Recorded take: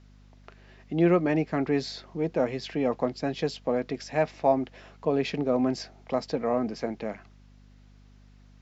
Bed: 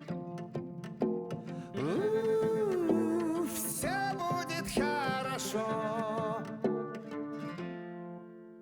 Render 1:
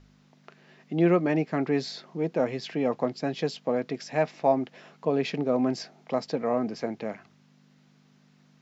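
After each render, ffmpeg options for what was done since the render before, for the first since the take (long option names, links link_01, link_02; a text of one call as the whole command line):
ffmpeg -i in.wav -af "bandreject=frequency=50:width_type=h:width=4,bandreject=frequency=100:width_type=h:width=4" out.wav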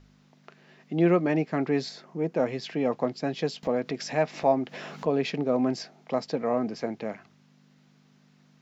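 ffmpeg -i in.wav -filter_complex "[0:a]asettb=1/sr,asplit=3[link_01][link_02][link_03];[link_01]atrim=end=1.894[link_04];[link_02]atrim=start=1.89:end=2.35,asetpts=PTS-STARTPTS,afade=type=in:duration=0.004:curve=qsin,afade=type=out:start_time=0.456:duration=0.004:curve=qsin,equalizer=frequency=3800:width_type=o:width=0.95:gain=-7[link_05];[link_03]atrim=start=2.346[link_06];[link_04][link_05]acrossfade=duration=0.004:curve1=hsin:curve2=qsin[link_07];[link_07][link_06]acrossfade=duration=0.004:curve1=qsin:curve2=hsin,asettb=1/sr,asplit=3[link_08][link_09][link_10];[link_08]atrim=end=3.634[link_11];[link_09]atrim=start=3.63:end=5.31,asetpts=PTS-STARTPTS,afade=type=in:duration=0.004:curve=qsin,afade=type=out:start_time=1.676:duration=0.004:curve=qsin,acompressor=mode=upward:threshold=-27dB:ratio=2.5:attack=3.2:release=140:knee=2.83:detection=peak[link_12];[link_10]atrim=start=5.306[link_13];[link_11][link_12]acrossfade=duration=0.004:curve1=hsin:curve2=qsin[link_14];[link_14][link_13]acrossfade=duration=0.004:curve1=qsin:curve2=hsin" out.wav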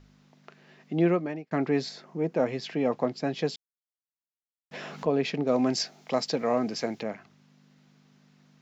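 ffmpeg -i in.wav -filter_complex "[0:a]asettb=1/sr,asplit=3[link_01][link_02][link_03];[link_01]atrim=end=5.474[link_04];[link_02]atrim=start=5.47:end=7.03,asetpts=PTS-STARTPTS,afade=type=in:duration=0.004:curve=qsin,afade=type=out:start_time=1.556:duration=0.004:curve=qsin,highshelf=frequency=2700:gain=12[link_05];[link_03]atrim=start=7.026[link_06];[link_04][link_05]acrossfade=duration=0.004:curve1=hsin:curve2=qsin[link_07];[link_07][link_06]acrossfade=duration=0.004:curve1=qsin:curve2=hsin,asplit=4[link_08][link_09][link_10][link_11];[link_08]atrim=end=1.51,asetpts=PTS-STARTPTS,afade=type=out:start_time=0.97:duration=0.54[link_12];[link_09]atrim=start=1.51:end=3.56,asetpts=PTS-STARTPTS,afade=type=in:duration=0.004:curve=hsin,afade=type=out:start_time=2.046:duration=0.004:curve=hsin[link_13];[link_10]atrim=start=3.56:end=4.71,asetpts=PTS-STARTPTS,volume=0[link_14];[link_11]atrim=start=4.71,asetpts=PTS-STARTPTS,afade=type=in:duration=0.004:curve=hsin[link_15];[link_12][link_13][link_14][link_15]concat=n=4:v=0:a=1" out.wav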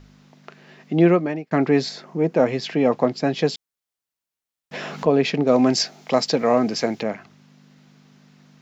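ffmpeg -i in.wav -af "volume=8dB" out.wav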